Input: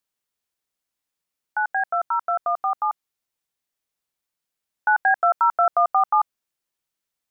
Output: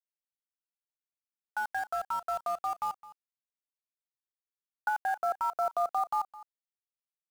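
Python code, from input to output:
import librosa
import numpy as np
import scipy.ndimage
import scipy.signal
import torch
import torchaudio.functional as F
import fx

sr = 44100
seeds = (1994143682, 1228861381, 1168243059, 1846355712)

y = fx.env_lowpass_down(x, sr, base_hz=1000.0, full_db=-18.0)
y = np.where(np.abs(y) >= 10.0 ** (-31.5 / 20.0), y, 0.0)
y = y + 10.0 ** (-18.0 / 20.0) * np.pad(y, (int(212 * sr / 1000.0), 0))[:len(y)]
y = F.gain(torch.from_numpy(y), -8.5).numpy()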